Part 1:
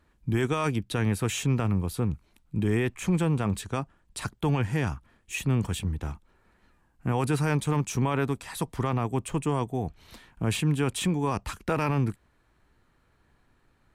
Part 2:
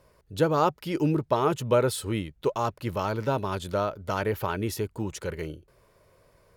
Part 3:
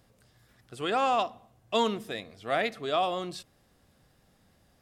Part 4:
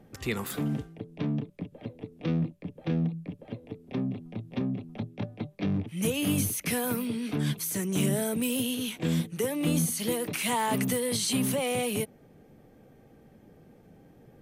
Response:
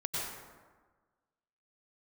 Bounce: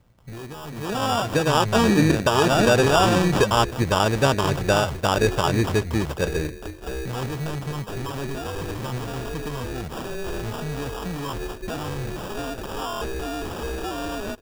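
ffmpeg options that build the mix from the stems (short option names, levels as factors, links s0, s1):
-filter_complex "[0:a]flanger=delay=6.9:depth=7.2:regen=89:speed=0.66:shape=triangular,asoftclip=type=tanh:threshold=0.0188,volume=1.12,asplit=2[s0][s1];[1:a]adelay=950,volume=0.794[s2];[2:a]bass=f=250:g=15,treble=f=4000:g=14,dynaudnorm=f=130:g=17:m=2.37,volume=0.447[s3];[3:a]asoftclip=type=tanh:threshold=0.0473,aeval=exprs='val(0)*sin(2*PI*1900*n/s)':c=same,adelay=2300,volume=1[s4];[s1]apad=whole_len=737260[s5];[s4][s5]sidechaincompress=threshold=0.01:ratio=8:attack=16:release=197[s6];[s0][s6]amix=inputs=2:normalize=0,equalizer=f=9400:t=o:w=0.45:g=-11.5,alimiter=level_in=2.51:limit=0.0631:level=0:latency=1:release=197,volume=0.398,volume=1[s7];[s2][s3]amix=inputs=2:normalize=0,alimiter=limit=0.133:level=0:latency=1:release=147,volume=1[s8];[s7][s8]amix=inputs=2:normalize=0,dynaudnorm=f=300:g=9:m=3.16,acrusher=samples=21:mix=1:aa=0.000001,acrossover=split=9300[s9][s10];[s10]acompressor=threshold=0.00891:ratio=4:attack=1:release=60[s11];[s9][s11]amix=inputs=2:normalize=0"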